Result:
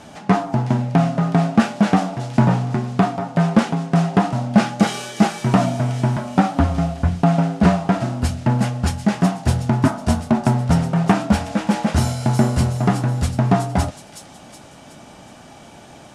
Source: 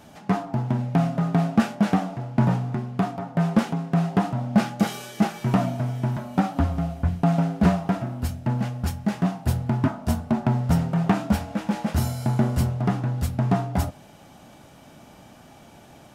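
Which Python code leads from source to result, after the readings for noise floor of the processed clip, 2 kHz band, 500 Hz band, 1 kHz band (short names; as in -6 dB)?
-43 dBFS, +7.0 dB, +6.5 dB, +7.0 dB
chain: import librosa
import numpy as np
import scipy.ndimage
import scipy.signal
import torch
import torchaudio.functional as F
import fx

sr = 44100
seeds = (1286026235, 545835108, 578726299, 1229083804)

p1 = scipy.signal.sosfilt(scipy.signal.butter(4, 10000.0, 'lowpass', fs=sr, output='sos'), x)
p2 = fx.low_shelf(p1, sr, hz=210.0, db=-3.5)
p3 = fx.rider(p2, sr, range_db=10, speed_s=0.5)
p4 = p2 + (p3 * librosa.db_to_amplitude(-0.5))
p5 = fx.echo_wet_highpass(p4, sr, ms=370, feedback_pct=47, hz=4300.0, wet_db=-4.5)
y = p5 * librosa.db_to_amplitude(1.5)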